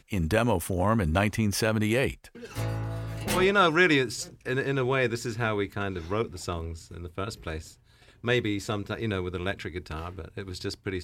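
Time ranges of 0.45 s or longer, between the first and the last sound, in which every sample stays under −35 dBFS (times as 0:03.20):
0:07.68–0:08.24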